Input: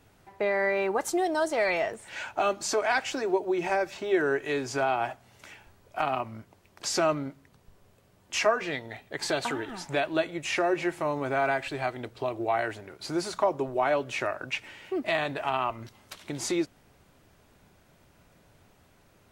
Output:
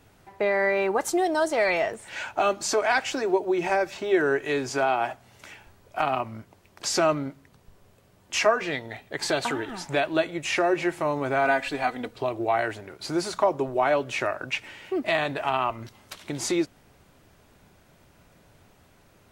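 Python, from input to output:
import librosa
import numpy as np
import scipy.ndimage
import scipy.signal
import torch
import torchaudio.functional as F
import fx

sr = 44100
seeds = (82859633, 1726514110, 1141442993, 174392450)

y = fx.highpass(x, sr, hz=150.0, slope=12, at=(4.69, 5.11))
y = fx.comb(y, sr, ms=4.1, depth=0.66, at=(11.45, 12.16))
y = y * librosa.db_to_amplitude(3.0)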